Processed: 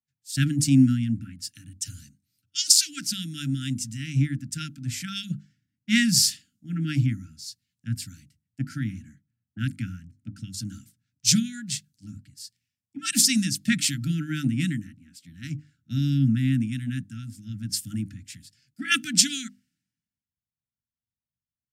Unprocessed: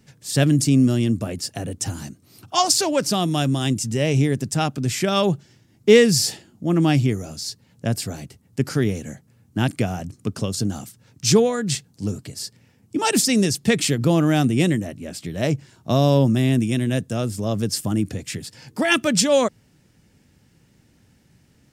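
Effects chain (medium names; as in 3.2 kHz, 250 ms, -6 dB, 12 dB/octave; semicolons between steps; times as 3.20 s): brick-wall FIR band-stop 310–1300 Hz; hum notches 50/100/150/200/250/300 Hz; three bands expanded up and down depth 100%; trim -6.5 dB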